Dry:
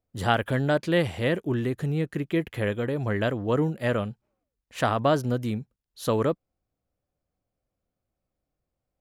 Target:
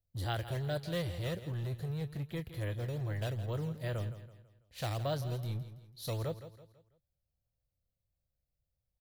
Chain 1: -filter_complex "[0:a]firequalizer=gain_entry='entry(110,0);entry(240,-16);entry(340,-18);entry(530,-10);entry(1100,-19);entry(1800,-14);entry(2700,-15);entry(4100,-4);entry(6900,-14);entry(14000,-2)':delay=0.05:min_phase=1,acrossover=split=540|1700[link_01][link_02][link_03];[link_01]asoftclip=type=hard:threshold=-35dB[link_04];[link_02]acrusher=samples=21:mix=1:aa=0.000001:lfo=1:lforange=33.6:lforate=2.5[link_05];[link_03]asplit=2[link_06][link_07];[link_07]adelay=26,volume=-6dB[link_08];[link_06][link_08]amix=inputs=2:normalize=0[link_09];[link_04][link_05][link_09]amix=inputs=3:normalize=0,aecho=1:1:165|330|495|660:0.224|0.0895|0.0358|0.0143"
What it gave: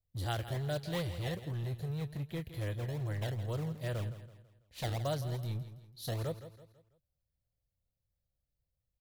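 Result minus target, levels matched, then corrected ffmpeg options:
sample-and-hold swept by an LFO: distortion +9 dB
-filter_complex "[0:a]firequalizer=gain_entry='entry(110,0);entry(240,-16);entry(340,-18);entry(530,-10);entry(1100,-19);entry(1800,-14);entry(2700,-15);entry(4100,-4);entry(6900,-14);entry(14000,-2)':delay=0.05:min_phase=1,acrossover=split=540|1700[link_01][link_02][link_03];[link_01]asoftclip=type=hard:threshold=-35dB[link_04];[link_02]acrusher=samples=8:mix=1:aa=0.000001:lfo=1:lforange=12.8:lforate=2.5[link_05];[link_03]asplit=2[link_06][link_07];[link_07]adelay=26,volume=-6dB[link_08];[link_06][link_08]amix=inputs=2:normalize=0[link_09];[link_04][link_05][link_09]amix=inputs=3:normalize=0,aecho=1:1:165|330|495|660:0.224|0.0895|0.0358|0.0143"

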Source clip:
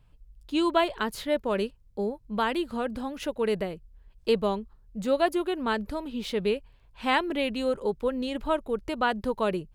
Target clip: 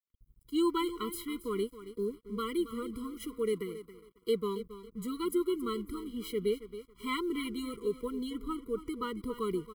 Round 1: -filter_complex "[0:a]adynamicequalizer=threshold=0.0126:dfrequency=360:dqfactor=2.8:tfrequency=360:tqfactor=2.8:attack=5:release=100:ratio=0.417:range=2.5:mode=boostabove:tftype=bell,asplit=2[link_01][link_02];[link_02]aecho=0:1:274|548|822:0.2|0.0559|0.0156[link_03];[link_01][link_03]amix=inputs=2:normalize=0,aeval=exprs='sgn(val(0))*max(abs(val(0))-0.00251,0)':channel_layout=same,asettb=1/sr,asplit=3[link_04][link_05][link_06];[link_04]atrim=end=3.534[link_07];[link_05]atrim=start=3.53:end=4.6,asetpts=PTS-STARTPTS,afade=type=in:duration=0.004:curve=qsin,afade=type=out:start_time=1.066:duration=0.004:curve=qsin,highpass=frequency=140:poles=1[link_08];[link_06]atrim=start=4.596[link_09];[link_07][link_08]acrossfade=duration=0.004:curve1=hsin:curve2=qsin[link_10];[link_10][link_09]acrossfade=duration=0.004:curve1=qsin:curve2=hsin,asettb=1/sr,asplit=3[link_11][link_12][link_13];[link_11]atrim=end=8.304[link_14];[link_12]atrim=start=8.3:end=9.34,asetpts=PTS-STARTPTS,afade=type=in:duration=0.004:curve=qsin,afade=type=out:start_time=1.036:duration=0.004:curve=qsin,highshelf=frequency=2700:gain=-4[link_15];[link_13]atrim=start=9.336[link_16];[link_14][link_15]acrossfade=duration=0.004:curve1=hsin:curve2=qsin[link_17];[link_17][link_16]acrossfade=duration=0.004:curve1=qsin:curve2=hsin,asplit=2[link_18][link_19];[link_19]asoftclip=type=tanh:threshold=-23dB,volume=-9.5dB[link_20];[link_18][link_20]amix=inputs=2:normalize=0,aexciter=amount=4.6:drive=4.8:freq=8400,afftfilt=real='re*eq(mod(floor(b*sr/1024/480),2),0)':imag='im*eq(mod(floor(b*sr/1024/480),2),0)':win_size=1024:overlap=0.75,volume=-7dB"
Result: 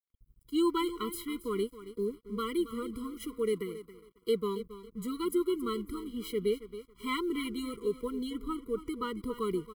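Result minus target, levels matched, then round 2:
soft clipping: distortion −7 dB
-filter_complex "[0:a]adynamicequalizer=threshold=0.0126:dfrequency=360:dqfactor=2.8:tfrequency=360:tqfactor=2.8:attack=5:release=100:ratio=0.417:range=2.5:mode=boostabove:tftype=bell,asplit=2[link_01][link_02];[link_02]aecho=0:1:274|548|822:0.2|0.0559|0.0156[link_03];[link_01][link_03]amix=inputs=2:normalize=0,aeval=exprs='sgn(val(0))*max(abs(val(0))-0.00251,0)':channel_layout=same,asettb=1/sr,asplit=3[link_04][link_05][link_06];[link_04]atrim=end=3.534[link_07];[link_05]atrim=start=3.53:end=4.6,asetpts=PTS-STARTPTS,afade=type=in:duration=0.004:curve=qsin,afade=type=out:start_time=1.066:duration=0.004:curve=qsin,highpass=frequency=140:poles=1[link_08];[link_06]atrim=start=4.596[link_09];[link_07][link_08]acrossfade=duration=0.004:curve1=hsin:curve2=qsin[link_10];[link_10][link_09]acrossfade=duration=0.004:curve1=qsin:curve2=hsin,asettb=1/sr,asplit=3[link_11][link_12][link_13];[link_11]atrim=end=8.304[link_14];[link_12]atrim=start=8.3:end=9.34,asetpts=PTS-STARTPTS,afade=type=in:duration=0.004:curve=qsin,afade=type=out:start_time=1.036:duration=0.004:curve=qsin,highshelf=frequency=2700:gain=-4[link_15];[link_13]atrim=start=9.336[link_16];[link_14][link_15]acrossfade=duration=0.004:curve1=hsin:curve2=qsin[link_17];[link_17][link_16]acrossfade=duration=0.004:curve1=qsin:curve2=hsin,asplit=2[link_18][link_19];[link_19]asoftclip=type=tanh:threshold=-33dB,volume=-9.5dB[link_20];[link_18][link_20]amix=inputs=2:normalize=0,aexciter=amount=4.6:drive=4.8:freq=8400,afftfilt=real='re*eq(mod(floor(b*sr/1024/480),2),0)':imag='im*eq(mod(floor(b*sr/1024/480),2),0)':win_size=1024:overlap=0.75,volume=-7dB"

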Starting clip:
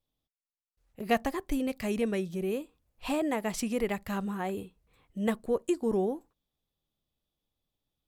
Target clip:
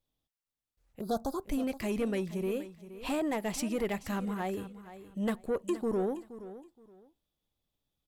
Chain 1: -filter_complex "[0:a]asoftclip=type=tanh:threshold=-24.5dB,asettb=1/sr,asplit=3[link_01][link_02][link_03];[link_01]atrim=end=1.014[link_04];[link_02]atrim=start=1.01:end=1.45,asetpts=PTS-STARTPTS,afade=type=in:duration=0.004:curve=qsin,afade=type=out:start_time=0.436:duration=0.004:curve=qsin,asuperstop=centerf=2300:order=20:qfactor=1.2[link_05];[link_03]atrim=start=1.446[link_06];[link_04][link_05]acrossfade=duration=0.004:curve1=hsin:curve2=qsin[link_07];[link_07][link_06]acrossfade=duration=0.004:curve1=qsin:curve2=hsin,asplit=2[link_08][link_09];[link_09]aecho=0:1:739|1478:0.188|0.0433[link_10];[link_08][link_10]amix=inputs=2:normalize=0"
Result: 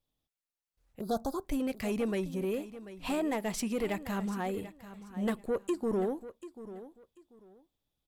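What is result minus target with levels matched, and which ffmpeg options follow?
echo 267 ms late
-filter_complex "[0:a]asoftclip=type=tanh:threshold=-24.5dB,asettb=1/sr,asplit=3[link_01][link_02][link_03];[link_01]atrim=end=1.014[link_04];[link_02]atrim=start=1.01:end=1.45,asetpts=PTS-STARTPTS,afade=type=in:duration=0.004:curve=qsin,afade=type=out:start_time=0.436:duration=0.004:curve=qsin,asuperstop=centerf=2300:order=20:qfactor=1.2[link_05];[link_03]atrim=start=1.446[link_06];[link_04][link_05]acrossfade=duration=0.004:curve1=hsin:curve2=qsin[link_07];[link_07][link_06]acrossfade=duration=0.004:curve1=qsin:curve2=hsin,asplit=2[link_08][link_09];[link_09]aecho=0:1:472|944:0.188|0.0433[link_10];[link_08][link_10]amix=inputs=2:normalize=0"

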